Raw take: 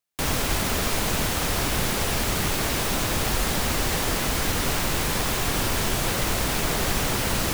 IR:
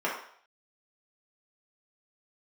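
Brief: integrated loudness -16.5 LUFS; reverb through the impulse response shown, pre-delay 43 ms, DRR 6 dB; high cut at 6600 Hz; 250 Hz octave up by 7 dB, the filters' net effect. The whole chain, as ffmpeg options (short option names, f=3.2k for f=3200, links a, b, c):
-filter_complex "[0:a]lowpass=6.6k,equalizer=f=250:t=o:g=9,asplit=2[a][b];[1:a]atrim=start_sample=2205,adelay=43[c];[b][c]afir=irnorm=-1:irlink=0,volume=-16.5dB[d];[a][d]amix=inputs=2:normalize=0,volume=6.5dB"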